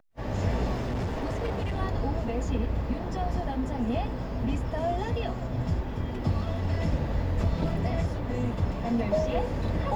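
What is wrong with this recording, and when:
0.73–1.8 clipped -26.5 dBFS

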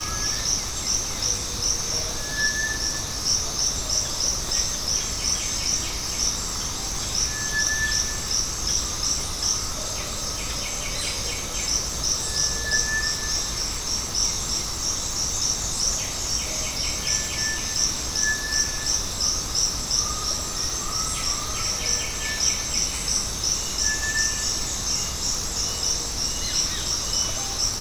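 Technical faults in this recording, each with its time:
crackle 200/s -30 dBFS

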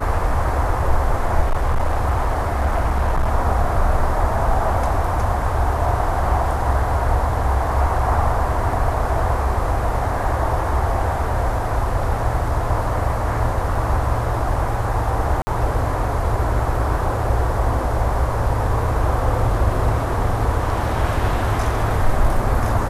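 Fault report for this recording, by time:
1.41–3.29 clipped -13.5 dBFS
13.75 gap 3.2 ms
15.42–15.47 gap 50 ms

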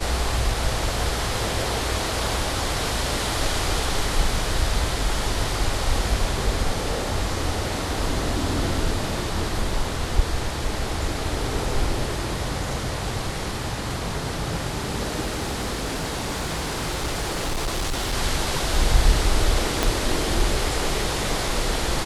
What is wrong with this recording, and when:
15.21–18.14 clipped -21.5 dBFS
19.83 pop

